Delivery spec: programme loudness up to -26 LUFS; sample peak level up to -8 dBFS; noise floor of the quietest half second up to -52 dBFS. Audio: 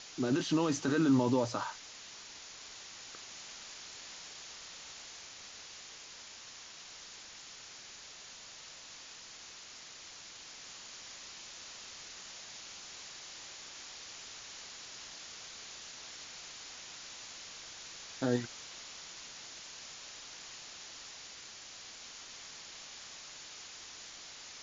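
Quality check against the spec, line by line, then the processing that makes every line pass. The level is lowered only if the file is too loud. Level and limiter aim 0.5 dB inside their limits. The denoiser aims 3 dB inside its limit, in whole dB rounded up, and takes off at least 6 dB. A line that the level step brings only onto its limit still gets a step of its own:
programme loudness -40.5 LUFS: OK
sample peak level -18.0 dBFS: OK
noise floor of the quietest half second -51 dBFS: fail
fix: denoiser 6 dB, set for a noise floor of -51 dBFS

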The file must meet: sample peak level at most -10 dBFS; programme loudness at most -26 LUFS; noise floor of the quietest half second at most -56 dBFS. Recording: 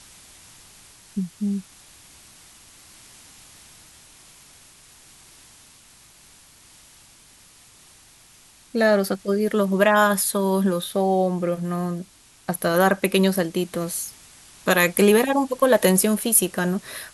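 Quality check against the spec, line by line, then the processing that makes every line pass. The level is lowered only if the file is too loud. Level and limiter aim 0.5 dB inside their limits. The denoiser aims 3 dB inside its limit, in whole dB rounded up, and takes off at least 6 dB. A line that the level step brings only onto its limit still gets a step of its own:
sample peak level -3.0 dBFS: fail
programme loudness -21.0 LUFS: fail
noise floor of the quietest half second -52 dBFS: fail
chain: gain -5.5 dB; limiter -10.5 dBFS

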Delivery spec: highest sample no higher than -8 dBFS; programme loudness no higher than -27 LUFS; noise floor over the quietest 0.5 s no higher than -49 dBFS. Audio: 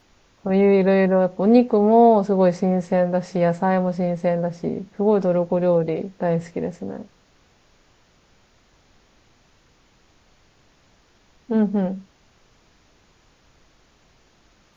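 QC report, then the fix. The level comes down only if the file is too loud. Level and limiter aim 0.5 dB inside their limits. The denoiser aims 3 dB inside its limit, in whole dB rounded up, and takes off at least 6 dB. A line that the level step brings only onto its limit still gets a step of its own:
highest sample -4.0 dBFS: fail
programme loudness -19.5 LUFS: fail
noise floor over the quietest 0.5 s -58 dBFS: OK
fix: gain -8 dB

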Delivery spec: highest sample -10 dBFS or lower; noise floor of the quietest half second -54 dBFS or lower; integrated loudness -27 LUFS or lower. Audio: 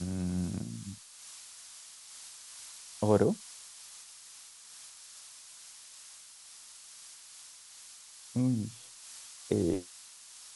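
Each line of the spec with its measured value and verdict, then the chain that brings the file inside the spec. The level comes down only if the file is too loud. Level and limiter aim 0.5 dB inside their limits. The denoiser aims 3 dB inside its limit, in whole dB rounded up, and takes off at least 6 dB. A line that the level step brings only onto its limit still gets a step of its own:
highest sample -11.5 dBFS: OK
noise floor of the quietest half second -52 dBFS: fail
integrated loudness -35.0 LUFS: OK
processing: denoiser 6 dB, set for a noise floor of -52 dBFS

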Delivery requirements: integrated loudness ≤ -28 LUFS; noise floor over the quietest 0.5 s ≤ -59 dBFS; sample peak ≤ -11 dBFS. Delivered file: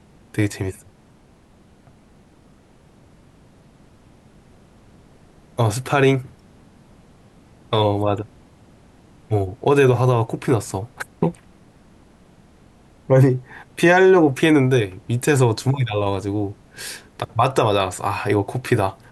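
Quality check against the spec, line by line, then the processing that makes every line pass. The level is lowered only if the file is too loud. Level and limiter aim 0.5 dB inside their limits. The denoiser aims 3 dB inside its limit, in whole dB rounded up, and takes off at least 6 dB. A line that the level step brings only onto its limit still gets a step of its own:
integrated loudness -19.5 LUFS: fail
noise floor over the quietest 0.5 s -52 dBFS: fail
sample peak -5.5 dBFS: fail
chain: gain -9 dB

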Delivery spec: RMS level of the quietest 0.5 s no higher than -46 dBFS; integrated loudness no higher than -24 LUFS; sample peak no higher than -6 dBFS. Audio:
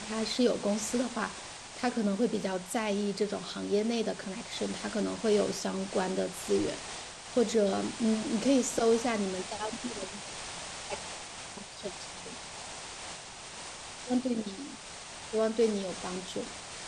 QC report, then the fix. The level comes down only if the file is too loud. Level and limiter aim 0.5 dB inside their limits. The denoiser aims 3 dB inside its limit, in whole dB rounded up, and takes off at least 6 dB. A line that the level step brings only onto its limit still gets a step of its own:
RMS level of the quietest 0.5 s -45 dBFS: fail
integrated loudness -32.5 LUFS: OK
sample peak -14.5 dBFS: OK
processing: denoiser 6 dB, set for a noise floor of -45 dBFS

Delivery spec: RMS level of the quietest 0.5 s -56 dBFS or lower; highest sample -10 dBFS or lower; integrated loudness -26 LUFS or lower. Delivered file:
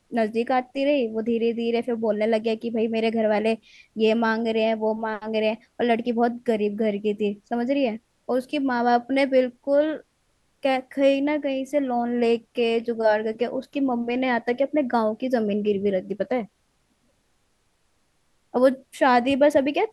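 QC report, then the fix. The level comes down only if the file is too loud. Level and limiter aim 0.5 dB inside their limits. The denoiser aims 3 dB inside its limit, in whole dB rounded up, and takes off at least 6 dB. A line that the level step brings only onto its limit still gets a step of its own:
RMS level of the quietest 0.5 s -68 dBFS: OK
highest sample -7.5 dBFS: fail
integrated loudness -23.5 LUFS: fail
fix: gain -3 dB

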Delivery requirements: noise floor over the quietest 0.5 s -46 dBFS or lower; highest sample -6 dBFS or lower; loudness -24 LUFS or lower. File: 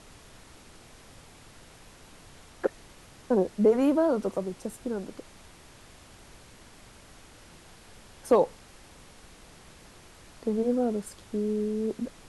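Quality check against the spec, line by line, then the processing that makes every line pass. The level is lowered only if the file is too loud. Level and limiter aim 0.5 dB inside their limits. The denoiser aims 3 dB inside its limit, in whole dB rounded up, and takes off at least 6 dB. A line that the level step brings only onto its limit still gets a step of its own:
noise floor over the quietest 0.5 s -52 dBFS: OK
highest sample -10.5 dBFS: OK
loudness -28.0 LUFS: OK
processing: none

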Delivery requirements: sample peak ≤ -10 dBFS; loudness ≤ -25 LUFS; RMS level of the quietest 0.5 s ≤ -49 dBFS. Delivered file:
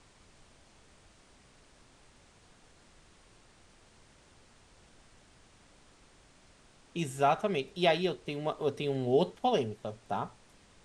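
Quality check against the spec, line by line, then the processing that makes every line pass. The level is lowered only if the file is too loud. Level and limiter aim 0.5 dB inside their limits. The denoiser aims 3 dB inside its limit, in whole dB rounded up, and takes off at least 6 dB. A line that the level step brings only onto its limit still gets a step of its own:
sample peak -13.0 dBFS: OK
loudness -31.5 LUFS: OK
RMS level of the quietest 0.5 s -61 dBFS: OK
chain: none

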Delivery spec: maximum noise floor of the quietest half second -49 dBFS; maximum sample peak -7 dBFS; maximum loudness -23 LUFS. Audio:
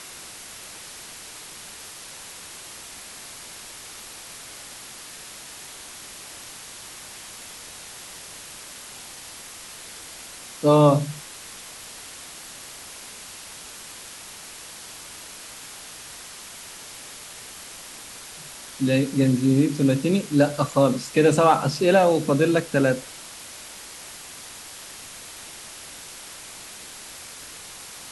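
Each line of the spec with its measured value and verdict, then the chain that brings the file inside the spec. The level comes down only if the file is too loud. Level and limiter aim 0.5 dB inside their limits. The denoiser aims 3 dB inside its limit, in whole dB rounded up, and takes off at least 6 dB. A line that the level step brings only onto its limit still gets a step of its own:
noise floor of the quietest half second -41 dBFS: fail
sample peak -5.0 dBFS: fail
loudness -20.5 LUFS: fail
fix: denoiser 8 dB, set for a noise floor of -41 dBFS; gain -3 dB

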